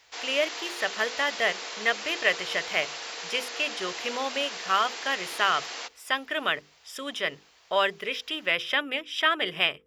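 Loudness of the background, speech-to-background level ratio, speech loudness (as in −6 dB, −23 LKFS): −35.0 LKFS, 7.0 dB, −28.0 LKFS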